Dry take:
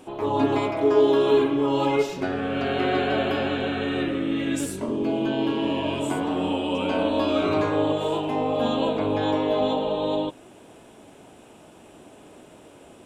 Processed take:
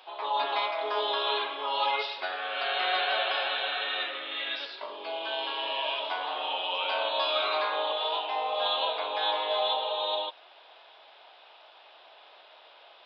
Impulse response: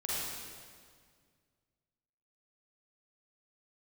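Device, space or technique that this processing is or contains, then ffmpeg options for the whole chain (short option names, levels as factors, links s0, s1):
musical greeting card: -af "aresample=11025,aresample=44100,highpass=f=700:w=0.5412,highpass=f=700:w=1.3066,equalizer=f=3700:t=o:w=0.48:g=8.5"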